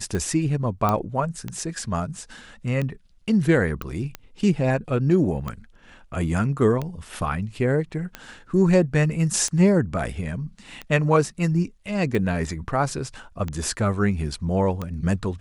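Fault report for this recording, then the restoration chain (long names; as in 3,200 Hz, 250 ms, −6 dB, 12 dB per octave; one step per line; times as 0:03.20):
scratch tick 45 rpm −16 dBFS
0:00.89: click −9 dBFS
0:03.82: click −17 dBFS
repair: click removal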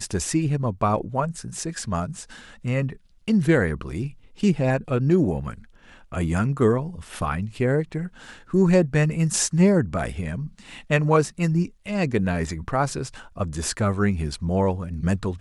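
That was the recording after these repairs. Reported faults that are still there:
none of them is left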